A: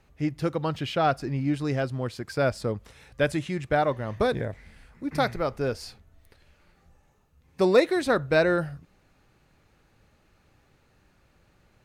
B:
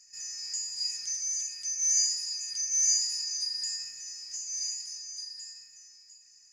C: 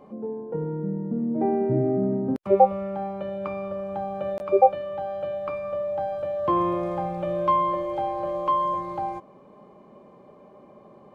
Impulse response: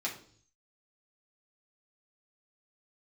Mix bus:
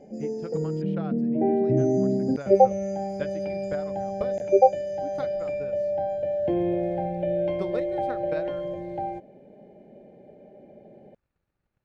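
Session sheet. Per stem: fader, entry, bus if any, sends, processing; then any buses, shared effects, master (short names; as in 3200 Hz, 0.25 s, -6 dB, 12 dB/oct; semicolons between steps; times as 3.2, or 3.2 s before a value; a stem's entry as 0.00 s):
-19.5 dB, 0.00 s, no send, high shelf 4200 Hz -11 dB; transient shaper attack +11 dB, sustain -1 dB
-18.0 dB, 0.00 s, muted 0.82–1.77, no send, bell 7100 Hz -3.5 dB; compressor, threshold -36 dBFS, peak gain reduction 11.5 dB
+2.0 dB, 0.00 s, no send, Chebyshev band-stop 720–1800 Hz, order 2; high shelf 3100 Hz -12 dB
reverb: off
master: dry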